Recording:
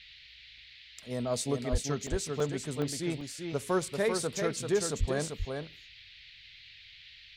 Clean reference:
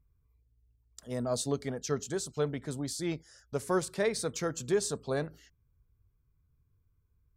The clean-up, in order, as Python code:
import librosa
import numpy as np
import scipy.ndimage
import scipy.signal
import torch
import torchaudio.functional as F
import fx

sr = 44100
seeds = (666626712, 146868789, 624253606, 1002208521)

y = fx.fix_deplosive(x, sr, at_s=(1.71, 4.99))
y = fx.fix_interpolate(y, sr, at_s=(0.58, 2.07, 2.4, 2.82, 3.21), length_ms=2.5)
y = fx.noise_reduce(y, sr, print_start_s=0.17, print_end_s=0.67, reduce_db=18.0)
y = fx.fix_echo_inverse(y, sr, delay_ms=391, level_db=-5.5)